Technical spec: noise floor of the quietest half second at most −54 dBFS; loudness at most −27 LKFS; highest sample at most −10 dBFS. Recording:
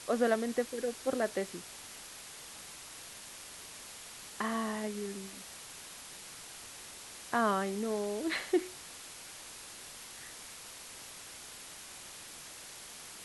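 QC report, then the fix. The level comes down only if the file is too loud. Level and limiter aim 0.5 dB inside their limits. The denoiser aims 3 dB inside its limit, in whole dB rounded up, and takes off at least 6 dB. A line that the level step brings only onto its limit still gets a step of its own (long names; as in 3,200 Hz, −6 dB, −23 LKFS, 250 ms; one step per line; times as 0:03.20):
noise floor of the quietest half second −49 dBFS: out of spec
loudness −38.0 LKFS: in spec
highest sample −16.0 dBFS: in spec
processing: broadband denoise 8 dB, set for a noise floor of −49 dBFS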